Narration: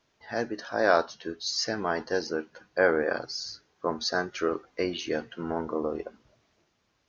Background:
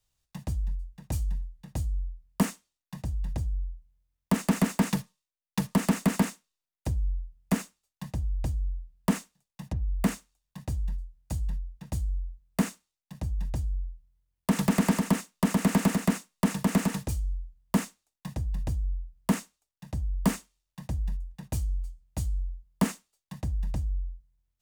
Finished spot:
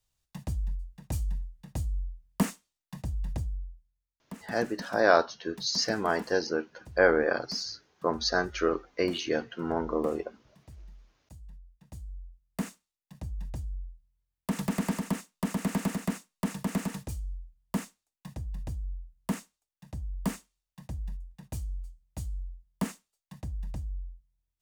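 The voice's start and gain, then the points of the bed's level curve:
4.20 s, +1.0 dB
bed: 3.38 s -1.5 dB
4.28 s -18 dB
11.4 s -18 dB
12.73 s -6 dB

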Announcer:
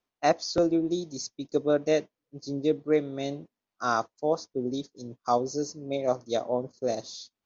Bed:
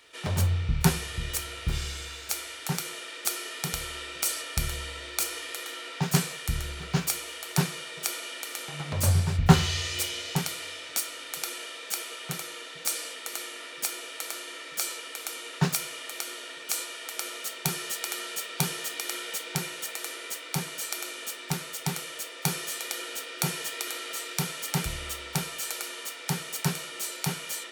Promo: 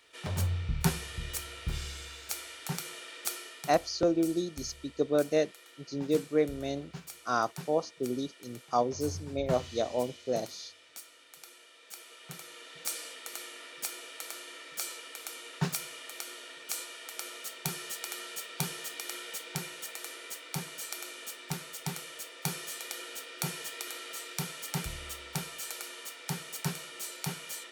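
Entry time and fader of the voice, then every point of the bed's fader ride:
3.45 s, -2.5 dB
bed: 3.29 s -5.5 dB
3.98 s -17.5 dB
11.67 s -17.5 dB
12.8 s -6 dB

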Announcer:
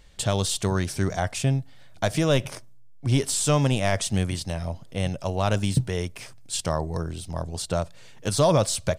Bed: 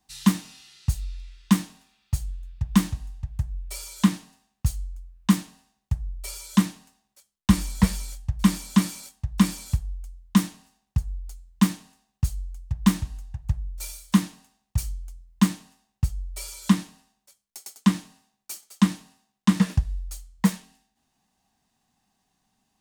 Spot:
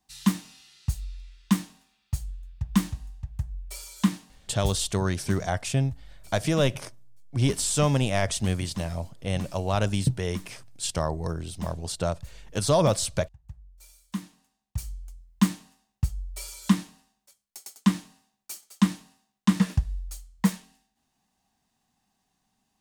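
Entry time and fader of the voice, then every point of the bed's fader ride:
4.30 s, -1.5 dB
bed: 4.65 s -3.5 dB
4.88 s -18 dB
13.78 s -18 dB
15.17 s -2 dB

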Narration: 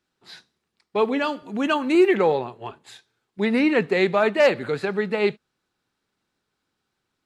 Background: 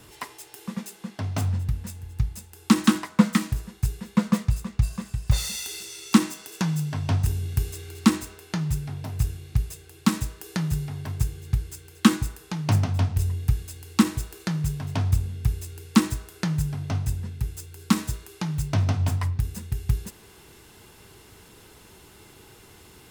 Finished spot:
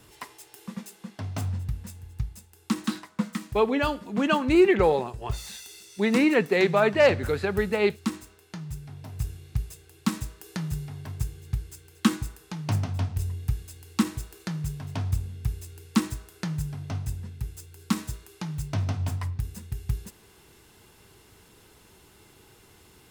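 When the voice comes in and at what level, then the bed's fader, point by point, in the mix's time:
2.60 s, -1.5 dB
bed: 1.99 s -4.5 dB
2.95 s -10.5 dB
8.68 s -10.5 dB
9.36 s -5 dB

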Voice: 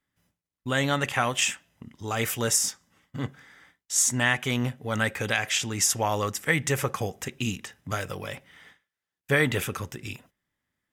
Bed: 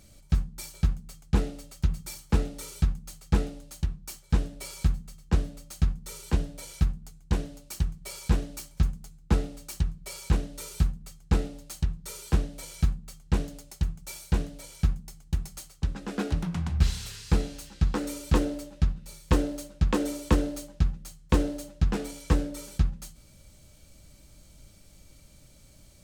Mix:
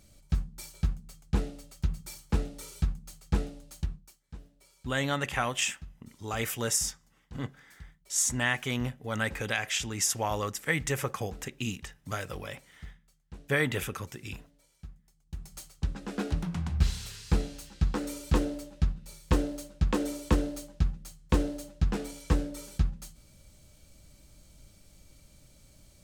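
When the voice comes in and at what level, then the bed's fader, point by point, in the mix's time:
4.20 s, -4.5 dB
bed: 3.95 s -4 dB
4.16 s -21.5 dB
15.12 s -21.5 dB
15.58 s -2.5 dB

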